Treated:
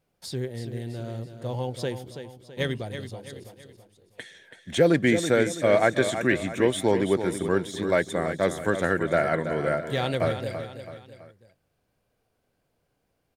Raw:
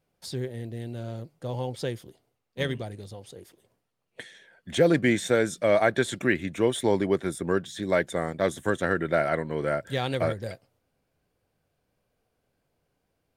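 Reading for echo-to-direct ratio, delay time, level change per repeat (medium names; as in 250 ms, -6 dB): -8.5 dB, 329 ms, -7.0 dB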